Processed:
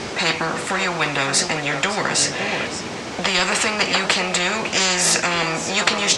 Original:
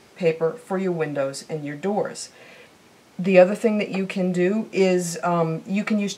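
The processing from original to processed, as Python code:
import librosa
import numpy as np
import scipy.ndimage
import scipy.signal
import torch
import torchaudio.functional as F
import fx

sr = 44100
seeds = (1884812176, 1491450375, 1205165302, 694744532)

y = scipy.signal.sosfilt(scipy.signal.butter(4, 7800.0, 'lowpass', fs=sr, output='sos'), x)
y = y + 10.0 ** (-19.5 / 20.0) * np.pad(y, (int(555 * sr / 1000.0), 0))[:len(y)]
y = fx.spectral_comp(y, sr, ratio=10.0)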